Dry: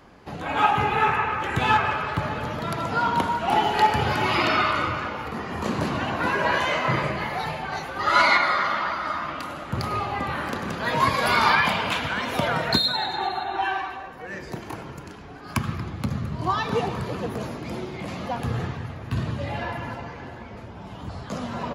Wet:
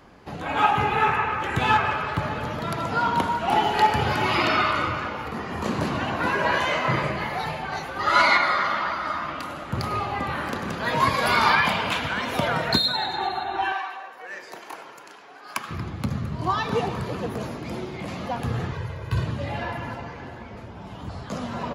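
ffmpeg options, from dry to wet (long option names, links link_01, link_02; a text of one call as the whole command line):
ffmpeg -i in.wav -filter_complex "[0:a]asettb=1/sr,asplit=3[link_01][link_02][link_03];[link_01]atrim=end=13.724[link_04];[link_02]atrim=start=13.72:end=15.71,asetpts=PTS-STARTPTS,afade=type=in:duration=0.004:curve=qsin,afade=type=out:start_time=1.986:duration=0.004:curve=qsin,highpass=580[link_05];[link_03]atrim=start=15.706[link_06];[link_04][link_05]acrossfade=duration=0.004:curve1=hsin:curve2=qsin[link_07];[link_07][link_06]acrossfade=duration=0.004:curve1=qsin:curve2=hsin,asettb=1/sr,asplit=3[link_08][link_09][link_10];[link_08]atrim=end=18.724[link_11];[link_09]atrim=start=18.72:end=19.26,asetpts=PTS-STARTPTS,afade=type=in:duration=0.004:curve=qsin,afade=type=out:start_time=0.536:duration=0.004:curve=qsin,aecho=1:1:2:0.73,atrim=end_sample=23814[link_12];[link_10]atrim=start=19.256[link_13];[link_11][link_12]acrossfade=duration=0.004:curve1=hsin:curve2=qsin[link_14];[link_14][link_13]acrossfade=duration=0.004:curve1=qsin:curve2=hsin" out.wav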